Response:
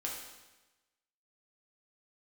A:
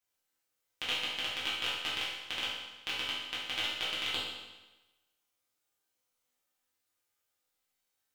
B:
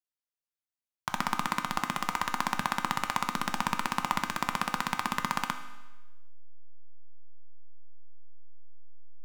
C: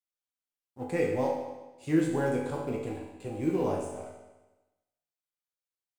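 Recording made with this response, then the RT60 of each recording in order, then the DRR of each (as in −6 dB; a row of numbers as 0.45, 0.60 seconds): C; 1.1, 1.1, 1.1 seconds; −10.0, 7.0, −3.0 decibels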